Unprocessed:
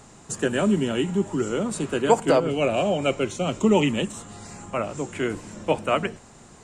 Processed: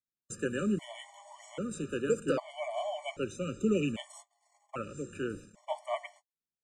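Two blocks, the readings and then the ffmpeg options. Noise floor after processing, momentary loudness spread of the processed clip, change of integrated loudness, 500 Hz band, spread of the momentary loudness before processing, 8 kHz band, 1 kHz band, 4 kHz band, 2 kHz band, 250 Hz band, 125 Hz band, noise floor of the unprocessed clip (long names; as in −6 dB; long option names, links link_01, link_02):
below −85 dBFS, 17 LU, −11.0 dB, −11.5 dB, 12 LU, −12.0 dB, −13.5 dB, −13.0 dB, −11.5 dB, −10.5 dB, −11.5 dB, −49 dBFS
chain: -af "agate=range=-48dB:threshold=-37dB:ratio=16:detection=peak,afftfilt=real='re*gt(sin(2*PI*0.63*pts/sr)*(1-2*mod(floor(b*sr/1024/590),2)),0)':imag='im*gt(sin(2*PI*0.63*pts/sr)*(1-2*mod(floor(b*sr/1024/590),2)),0)':win_size=1024:overlap=0.75,volume=-9dB"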